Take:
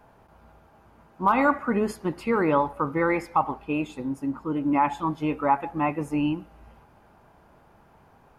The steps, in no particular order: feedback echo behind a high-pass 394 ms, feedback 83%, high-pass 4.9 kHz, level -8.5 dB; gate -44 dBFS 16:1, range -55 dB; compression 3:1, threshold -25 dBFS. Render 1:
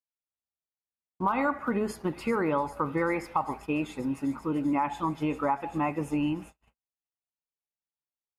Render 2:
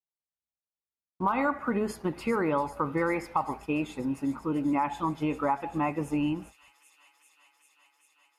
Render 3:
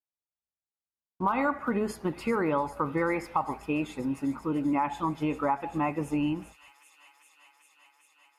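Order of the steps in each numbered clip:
feedback echo behind a high-pass > compression > gate; compression > gate > feedback echo behind a high-pass; gate > feedback echo behind a high-pass > compression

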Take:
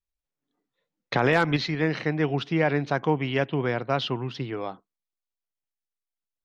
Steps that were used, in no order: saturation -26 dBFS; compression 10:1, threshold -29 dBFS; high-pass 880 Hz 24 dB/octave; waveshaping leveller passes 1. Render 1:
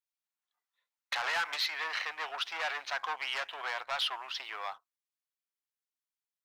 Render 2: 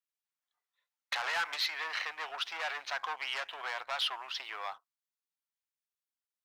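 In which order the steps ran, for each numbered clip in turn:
saturation > high-pass > compression > waveshaping leveller; saturation > compression > high-pass > waveshaping leveller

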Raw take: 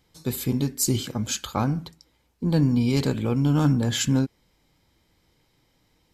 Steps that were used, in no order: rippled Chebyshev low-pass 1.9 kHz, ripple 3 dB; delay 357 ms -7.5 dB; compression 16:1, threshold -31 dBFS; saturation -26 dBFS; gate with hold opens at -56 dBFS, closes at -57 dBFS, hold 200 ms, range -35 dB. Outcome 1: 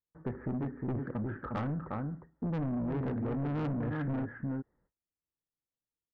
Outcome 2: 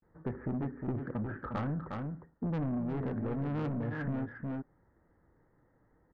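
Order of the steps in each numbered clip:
rippled Chebyshev low-pass > gate with hold > delay > saturation > compression; gate with hold > rippled Chebyshev low-pass > saturation > delay > compression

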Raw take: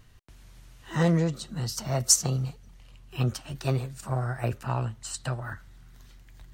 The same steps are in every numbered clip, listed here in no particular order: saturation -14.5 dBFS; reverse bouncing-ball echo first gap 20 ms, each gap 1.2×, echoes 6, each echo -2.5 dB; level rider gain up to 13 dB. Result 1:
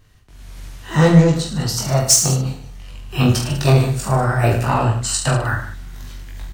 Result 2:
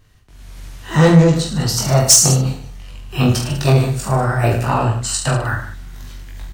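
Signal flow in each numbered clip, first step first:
saturation > reverse bouncing-ball echo > level rider; reverse bouncing-ball echo > saturation > level rider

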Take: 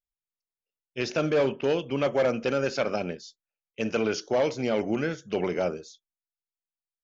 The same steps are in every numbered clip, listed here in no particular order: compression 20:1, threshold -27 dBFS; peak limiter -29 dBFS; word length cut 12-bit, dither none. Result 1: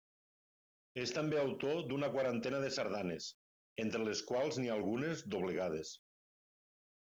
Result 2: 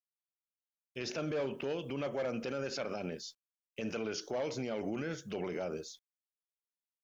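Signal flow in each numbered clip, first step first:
compression > peak limiter > word length cut; word length cut > compression > peak limiter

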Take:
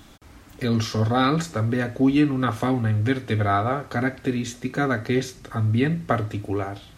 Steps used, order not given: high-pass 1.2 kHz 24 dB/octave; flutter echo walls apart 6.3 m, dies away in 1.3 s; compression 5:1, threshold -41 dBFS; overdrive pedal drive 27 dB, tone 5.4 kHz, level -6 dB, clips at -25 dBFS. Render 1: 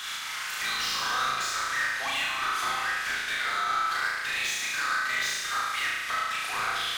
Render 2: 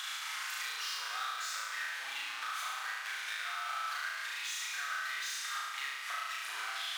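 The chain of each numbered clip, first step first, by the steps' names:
high-pass > compression > overdrive pedal > flutter echo; overdrive pedal > high-pass > compression > flutter echo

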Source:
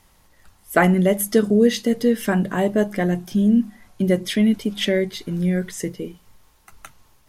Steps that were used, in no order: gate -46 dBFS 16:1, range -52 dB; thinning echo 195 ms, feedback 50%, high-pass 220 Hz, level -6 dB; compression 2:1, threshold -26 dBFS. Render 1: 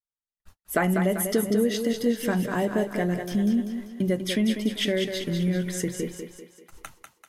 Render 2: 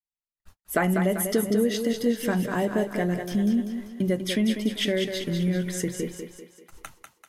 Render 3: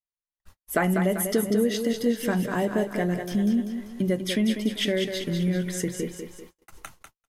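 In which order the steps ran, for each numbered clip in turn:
compression > gate > thinning echo; gate > compression > thinning echo; compression > thinning echo > gate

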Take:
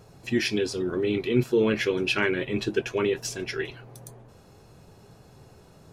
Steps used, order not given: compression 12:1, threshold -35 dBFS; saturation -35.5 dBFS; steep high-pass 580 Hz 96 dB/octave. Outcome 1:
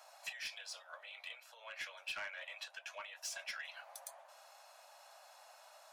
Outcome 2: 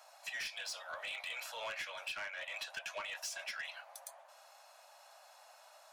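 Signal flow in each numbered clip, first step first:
compression > steep high-pass > saturation; steep high-pass > compression > saturation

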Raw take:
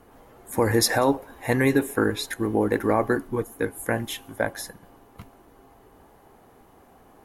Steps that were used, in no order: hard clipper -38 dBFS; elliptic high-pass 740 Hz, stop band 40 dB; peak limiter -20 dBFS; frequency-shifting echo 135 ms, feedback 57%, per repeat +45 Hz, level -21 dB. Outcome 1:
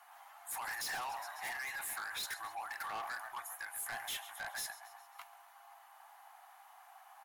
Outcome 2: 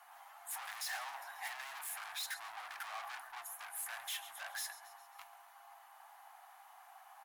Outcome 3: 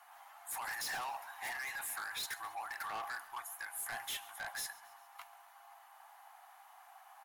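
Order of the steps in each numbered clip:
frequency-shifting echo > peak limiter > elliptic high-pass > hard clipper; peak limiter > frequency-shifting echo > hard clipper > elliptic high-pass; peak limiter > elliptic high-pass > hard clipper > frequency-shifting echo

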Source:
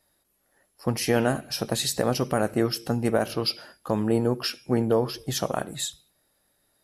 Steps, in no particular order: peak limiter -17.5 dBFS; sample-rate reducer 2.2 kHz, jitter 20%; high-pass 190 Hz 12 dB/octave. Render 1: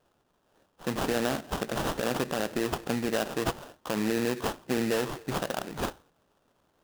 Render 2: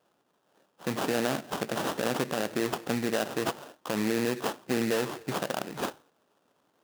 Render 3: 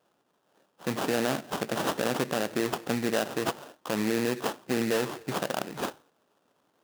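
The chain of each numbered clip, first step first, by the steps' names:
peak limiter > high-pass > sample-rate reducer; peak limiter > sample-rate reducer > high-pass; sample-rate reducer > peak limiter > high-pass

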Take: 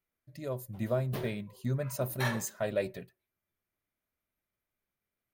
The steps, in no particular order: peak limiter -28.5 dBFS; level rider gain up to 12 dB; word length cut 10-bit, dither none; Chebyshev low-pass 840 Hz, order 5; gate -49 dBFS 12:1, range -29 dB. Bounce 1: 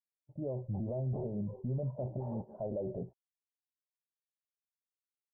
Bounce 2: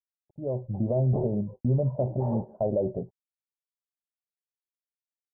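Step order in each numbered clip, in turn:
level rider > peak limiter > word length cut > gate > Chebyshev low-pass; peak limiter > gate > level rider > word length cut > Chebyshev low-pass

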